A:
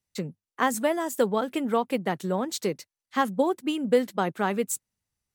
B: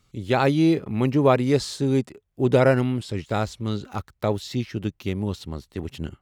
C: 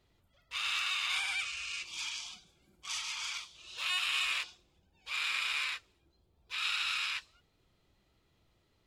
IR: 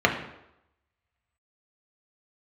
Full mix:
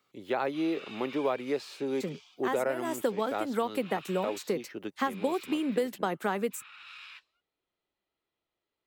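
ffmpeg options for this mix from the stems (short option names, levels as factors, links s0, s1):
-filter_complex "[0:a]adelay=1850,volume=1.26[s0];[1:a]highpass=410,equalizer=f=8100:w=0.54:g=-13.5,volume=0.794,asplit=2[s1][s2];[2:a]acrossover=split=270 4300:gain=0.158 1 0.2[s3][s4][s5];[s3][s4][s5]amix=inputs=3:normalize=0,volume=0.266[s6];[s2]apad=whole_len=317233[s7];[s0][s7]sidechaincompress=threshold=0.0282:ratio=3:attack=5.7:release=226[s8];[s8][s1][s6]amix=inputs=3:normalize=0,acrossover=split=210|2200[s9][s10][s11];[s9]acompressor=threshold=0.00398:ratio=4[s12];[s10]acompressor=threshold=0.0447:ratio=4[s13];[s11]acompressor=threshold=0.00501:ratio=4[s14];[s12][s13][s14]amix=inputs=3:normalize=0,highshelf=f=8800:g=5.5"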